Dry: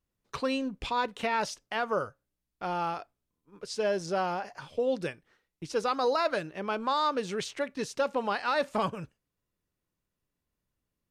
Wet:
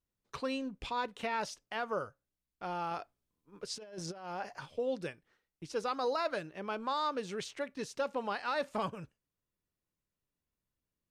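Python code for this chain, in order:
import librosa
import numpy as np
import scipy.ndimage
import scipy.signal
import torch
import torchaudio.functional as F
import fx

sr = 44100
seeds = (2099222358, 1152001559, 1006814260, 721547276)

y = fx.over_compress(x, sr, threshold_db=-34.0, ratio=-0.5, at=(2.91, 4.66))
y = F.gain(torch.from_numpy(y), -6.0).numpy()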